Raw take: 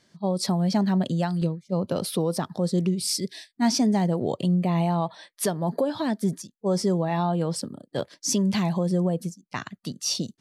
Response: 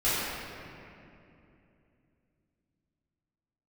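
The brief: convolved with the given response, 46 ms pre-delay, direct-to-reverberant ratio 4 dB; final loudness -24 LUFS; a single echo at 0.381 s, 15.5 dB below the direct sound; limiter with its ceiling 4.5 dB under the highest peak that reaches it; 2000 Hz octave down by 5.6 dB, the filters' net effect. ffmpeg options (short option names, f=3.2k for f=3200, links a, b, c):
-filter_complex "[0:a]equalizer=f=2k:t=o:g=-7,alimiter=limit=-18.5dB:level=0:latency=1,aecho=1:1:381:0.168,asplit=2[a][b];[1:a]atrim=start_sample=2205,adelay=46[c];[b][c]afir=irnorm=-1:irlink=0,volume=-17.5dB[d];[a][d]amix=inputs=2:normalize=0,volume=2.5dB"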